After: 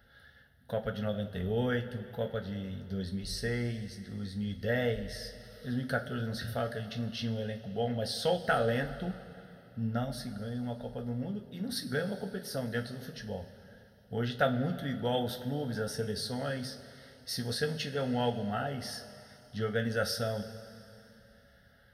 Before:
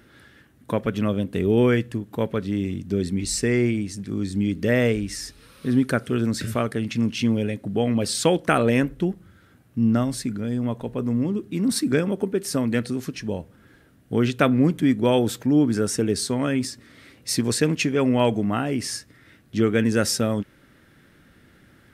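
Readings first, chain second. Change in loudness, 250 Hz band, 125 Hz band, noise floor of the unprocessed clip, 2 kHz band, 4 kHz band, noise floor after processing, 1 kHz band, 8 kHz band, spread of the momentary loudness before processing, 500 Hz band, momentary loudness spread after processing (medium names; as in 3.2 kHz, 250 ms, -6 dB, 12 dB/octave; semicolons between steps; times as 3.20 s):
-11.5 dB, -14.5 dB, -9.5 dB, -56 dBFS, -7.5 dB, -7.0 dB, -60 dBFS, -7.5 dB, -15.5 dB, 10 LU, -9.5 dB, 12 LU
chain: wow and flutter 27 cents; static phaser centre 1.6 kHz, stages 8; two-slope reverb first 0.22 s, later 3 s, from -18 dB, DRR 3 dB; trim -7 dB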